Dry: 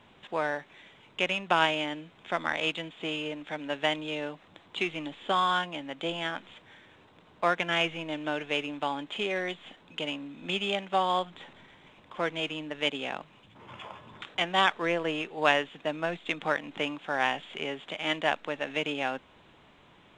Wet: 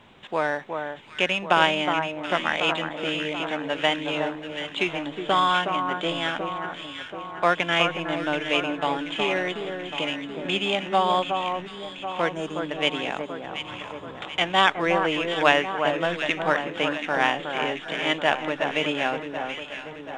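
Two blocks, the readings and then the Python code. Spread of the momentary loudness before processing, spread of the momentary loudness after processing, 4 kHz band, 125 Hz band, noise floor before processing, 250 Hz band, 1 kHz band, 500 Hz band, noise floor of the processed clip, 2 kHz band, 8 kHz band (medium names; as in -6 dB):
15 LU, 12 LU, +5.5 dB, +6.5 dB, -58 dBFS, +6.5 dB, +6.5 dB, +6.5 dB, -40 dBFS, +6.0 dB, +6.0 dB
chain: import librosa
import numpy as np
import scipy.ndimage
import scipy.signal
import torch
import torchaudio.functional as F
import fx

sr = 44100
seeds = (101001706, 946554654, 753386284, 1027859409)

y = fx.spec_box(x, sr, start_s=12.32, length_s=0.29, low_hz=1800.0, high_hz=5300.0, gain_db=-15)
y = fx.echo_alternate(y, sr, ms=366, hz=1600.0, feedback_pct=73, wet_db=-5.5)
y = y * librosa.db_to_amplitude(5.0)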